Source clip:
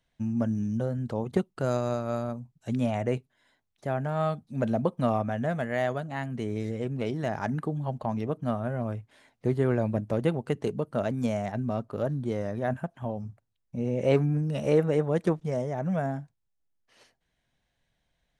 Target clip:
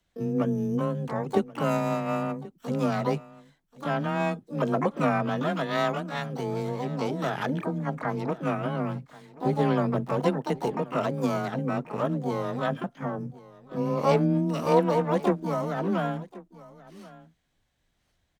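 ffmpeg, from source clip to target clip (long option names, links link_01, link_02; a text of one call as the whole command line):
ffmpeg -i in.wav -filter_complex "[0:a]asplit=3[link_01][link_02][link_03];[link_02]asetrate=66075,aresample=44100,atempo=0.66742,volume=-11dB[link_04];[link_03]asetrate=88200,aresample=44100,atempo=0.5,volume=-5dB[link_05];[link_01][link_04][link_05]amix=inputs=3:normalize=0,afreqshift=20,aecho=1:1:1082:0.1" out.wav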